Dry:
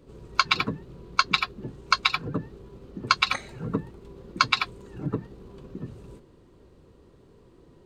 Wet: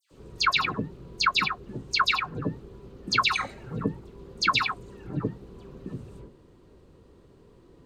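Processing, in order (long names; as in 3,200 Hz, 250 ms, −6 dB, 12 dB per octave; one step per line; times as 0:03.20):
all-pass dispersion lows, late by 111 ms, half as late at 2,000 Hz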